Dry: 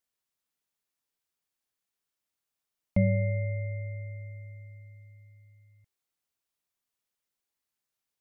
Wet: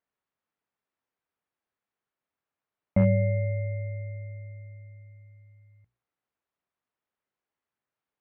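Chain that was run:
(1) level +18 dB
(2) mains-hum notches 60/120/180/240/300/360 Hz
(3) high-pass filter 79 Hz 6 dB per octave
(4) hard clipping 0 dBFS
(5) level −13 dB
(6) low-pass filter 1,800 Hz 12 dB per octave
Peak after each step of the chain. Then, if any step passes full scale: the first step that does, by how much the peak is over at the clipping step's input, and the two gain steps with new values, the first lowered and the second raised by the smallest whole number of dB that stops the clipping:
+4.0, +4.0, +3.5, 0.0, −13.0, −13.0 dBFS
step 1, 3.5 dB
step 1 +14 dB, step 5 −9 dB

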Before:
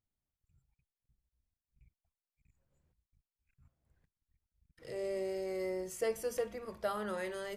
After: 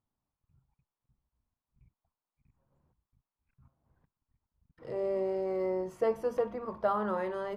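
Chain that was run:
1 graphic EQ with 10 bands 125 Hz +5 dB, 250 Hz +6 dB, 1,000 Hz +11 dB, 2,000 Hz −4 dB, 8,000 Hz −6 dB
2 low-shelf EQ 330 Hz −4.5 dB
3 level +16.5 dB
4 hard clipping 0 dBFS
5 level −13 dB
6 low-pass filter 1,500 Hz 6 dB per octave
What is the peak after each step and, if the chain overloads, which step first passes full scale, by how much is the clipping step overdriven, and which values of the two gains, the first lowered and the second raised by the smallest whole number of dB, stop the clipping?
−19.0, −20.0, −3.5, −3.5, −16.5, −17.0 dBFS
no step passes full scale

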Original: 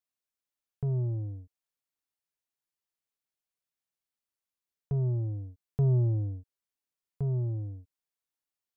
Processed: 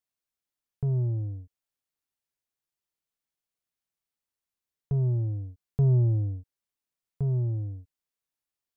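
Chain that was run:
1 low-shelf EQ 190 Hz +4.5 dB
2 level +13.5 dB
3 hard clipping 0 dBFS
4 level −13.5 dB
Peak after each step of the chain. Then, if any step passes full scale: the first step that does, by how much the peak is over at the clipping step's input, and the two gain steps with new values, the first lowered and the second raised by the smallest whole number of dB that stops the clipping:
−17.5, −4.0, −4.0, −17.5 dBFS
no step passes full scale

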